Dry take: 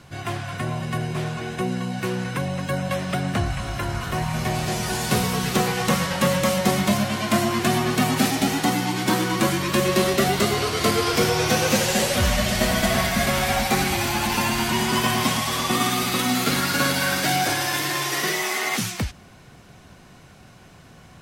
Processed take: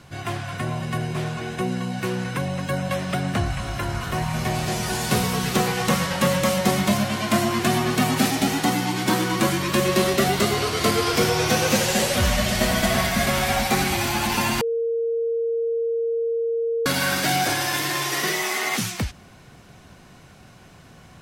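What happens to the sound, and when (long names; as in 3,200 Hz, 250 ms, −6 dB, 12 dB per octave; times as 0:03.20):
0:14.61–0:16.86: beep over 461 Hz −20.5 dBFS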